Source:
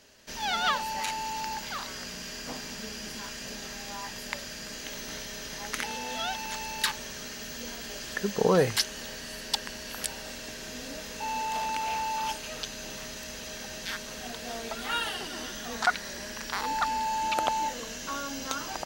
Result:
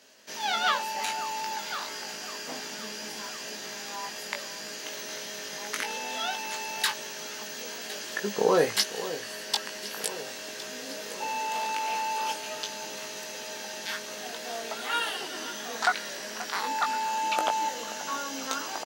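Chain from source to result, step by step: HPF 260 Hz 12 dB/oct; doubler 19 ms -5 dB; echo with dull and thin repeats by turns 0.53 s, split 1300 Hz, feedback 74%, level -13 dB

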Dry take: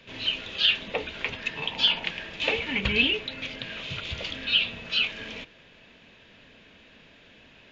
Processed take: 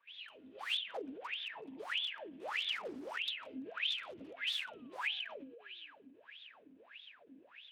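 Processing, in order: de-hum 66.83 Hz, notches 3; AGC gain up to 11.5 dB; spring tank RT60 3.2 s, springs 45 ms, chirp 25 ms, DRR 9 dB; wrapped overs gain 15.5 dB; painted sound fall, 4.01–5.93, 280–3600 Hz -34 dBFS; wah 1.6 Hz 260–3600 Hz, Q 19; ending taper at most 110 dB/s; gain +1 dB

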